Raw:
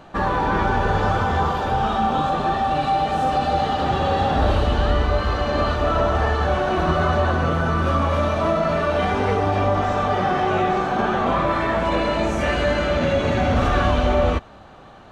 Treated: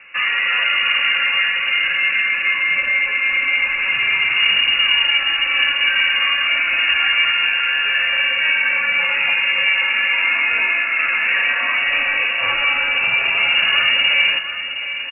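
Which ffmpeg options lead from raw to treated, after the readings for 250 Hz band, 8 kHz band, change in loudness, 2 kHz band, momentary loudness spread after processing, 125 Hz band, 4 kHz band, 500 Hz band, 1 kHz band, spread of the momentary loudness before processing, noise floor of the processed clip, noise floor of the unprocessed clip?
below −20 dB, can't be measured, +5.5 dB, +14.5 dB, 3 LU, below −25 dB, +16.5 dB, −17.0 dB, −8.5 dB, 2 LU, −24 dBFS, −44 dBFS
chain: -af "aecho=1:1:716:0.316,lowpass=frequency=2500:width_type=q:width=0.5098,lowpass=frequency=2500:width_type=q:width=0.6013,lowpass=frequency=2500:width_type=q:width=0.9,lowpass=frequency=2500:width_type=q:width=2.563,afreqshift=-2900,volume=2dB"

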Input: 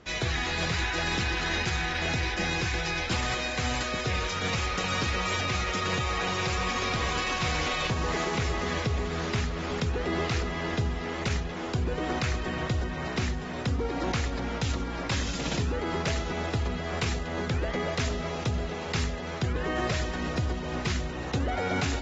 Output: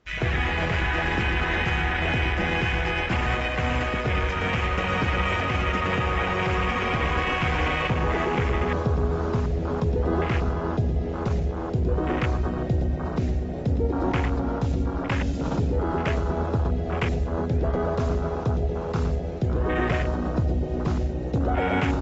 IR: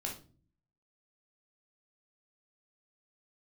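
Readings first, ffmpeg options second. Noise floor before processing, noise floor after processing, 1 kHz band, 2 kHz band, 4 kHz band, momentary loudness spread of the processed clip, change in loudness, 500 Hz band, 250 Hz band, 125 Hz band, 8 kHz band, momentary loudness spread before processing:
−34 dBFS, −30 dBFS, +4.0 dB, +3.0 dB, −3.0 dB, 3 LU, +4.0 dB, +5.5 dB, +5.5 dB, +6.0 dB, can't be measured, 4 LU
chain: -filter_complex "[0:a]aecho=1:1:113:0.376,asplit=2[link_01][link_02];[1:a]atrim=start_sample=2205,adelay=99[link_03];[link_02][link_03]afir=irnorm=-1:irlink=0,volume=-12.5dB[link_04];[link_01][link_04]amix=inputs=2:normalize=0,afwtdn=0.0282,volume=4.5dB"

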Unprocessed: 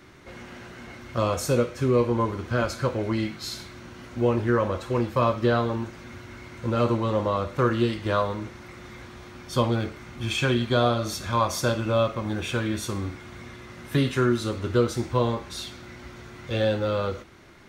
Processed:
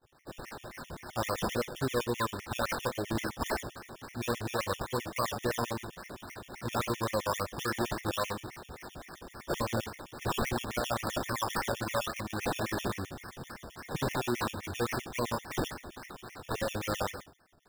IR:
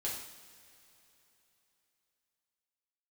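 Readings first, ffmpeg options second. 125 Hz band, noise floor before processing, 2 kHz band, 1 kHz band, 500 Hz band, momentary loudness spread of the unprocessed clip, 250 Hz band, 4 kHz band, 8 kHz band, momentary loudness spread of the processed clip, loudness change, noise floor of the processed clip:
−11.5 dB, −45 dBFS, −4.0 dB, −5.5 dB, −10.0 dB, 19 LU, −10.0 dB, −5.5 dB, −2.5 dB, 13 LU, −8.5 dB, −57 dBFS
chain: -af "agate=range=-33dB:threshold=-41dB:ratio=3:detection=peak,lowpass=8300,tiltshelf=frequency=1500:gain=-9.5,alimiter=limit=-22.5dB:level=0:latency=1:release=12,acrusher=samples=17:mix=1:aa=0.000001:lfo=1:lforange=10.2:lforate=3.6,afftfilt=real='re*gt(sin(2*PI*7.7*pts/sr)*(1-2*mod(floor(b*sr/1024/1800),2)),0)':imag='im*gt(sin(2*PI*7.7*pts/sr)*(1-2*mod(floor(b*sr/1024/1800),2)),0)':win_size=1024:overlap=0.75,volume=2.5dB"

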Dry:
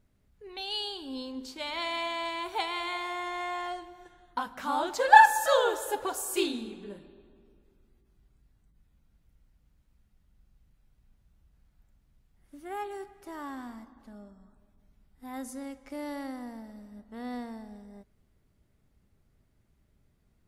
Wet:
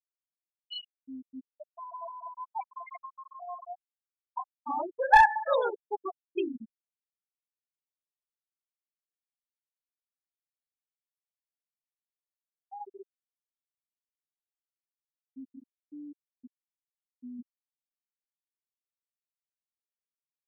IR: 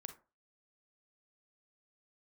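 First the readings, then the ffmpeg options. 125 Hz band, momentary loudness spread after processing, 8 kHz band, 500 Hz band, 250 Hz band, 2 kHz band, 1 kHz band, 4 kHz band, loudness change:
can't be measured, 24 LU, below −20 dB, −3.0 dB, −6.0 dB, −3.0 dB, −2.5 dB, −11.0 dB, 0.0 dB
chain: -af "flanger=delay=4.1:depth=6:regen=-72:speed=0.58:shape=triangular,afftfilt=real='re*gte(hypot(re,im),0.0891)':imag='im*gte(hypot(re,im),0.0891)':win_size=1024:overlap=0.75,aeval=exprs='clip(val(0),-1,0.158)':channel_layout=same,volume=2.5dB"

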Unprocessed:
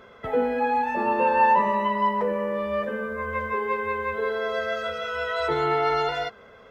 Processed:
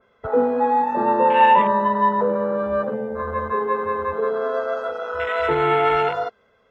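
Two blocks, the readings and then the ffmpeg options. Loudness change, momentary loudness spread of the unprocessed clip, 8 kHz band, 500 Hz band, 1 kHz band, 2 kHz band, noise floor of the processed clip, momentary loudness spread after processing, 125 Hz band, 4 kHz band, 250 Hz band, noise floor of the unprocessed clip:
+4.5 dB, 9 LU, can't be measured, +5.0 dB, +5.0 dB, +1.0 dB, −61 dBFS, 11 LU, +4.5 dB, +0.5 dB, +5.0 dB, −50 dBFS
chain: -af "afwtdn=0.0447,adynamicequalizer=threshold=0.0141:dfrequency=2900:dqfactor=0.7:tfrequency=2900:tqfactor=0.7:attack=5:release=100:ratio=0.375:range=2:mode=boostabove:tftype=highshelf,volume=5dB"

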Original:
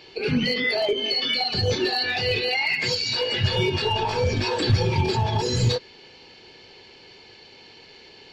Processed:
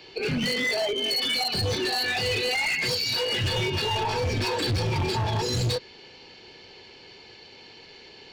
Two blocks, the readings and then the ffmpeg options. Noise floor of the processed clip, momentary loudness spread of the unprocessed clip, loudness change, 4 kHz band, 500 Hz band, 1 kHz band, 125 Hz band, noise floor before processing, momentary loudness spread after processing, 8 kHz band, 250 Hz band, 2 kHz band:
−49 dBFS, 2 LU, −2.5 dB, −1.5 dB, −3.5 dB, −2.5 dB, −4.0 dB, −49 dBFS, 3 LU, +2.5 dB, −4.0 dB, −1.5 dB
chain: -filter_complex "[0:a]acrossover=split=150|810|4000[link_01][link_02][link_03][link_04];[link_02]alimiter=limit=-23dB:level=0:latency=1:release=65[link_05];[link_01][link_05][link_03][link_04]amix=inputs=4:normalize=0,volume=22.5dB,asoftclip=hard,volume=-22.5dB"

